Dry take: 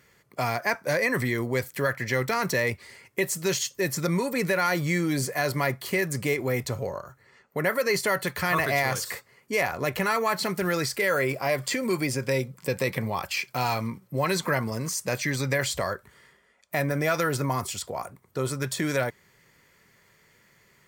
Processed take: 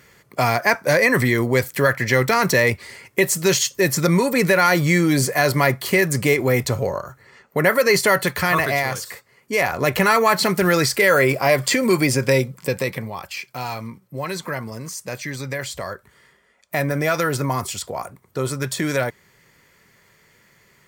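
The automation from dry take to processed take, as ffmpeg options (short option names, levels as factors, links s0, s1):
-af "volume=20,afade=t=out:st=8.16:d=0.99:silence=0.298538,afade=t=in:st=9.15:d=0.83:silence=0.281838,afade=t=out:st=12.29:d=0.81:silence=0.281838,afade=t=in:st=15.76:d=0.99:silence=0.473151"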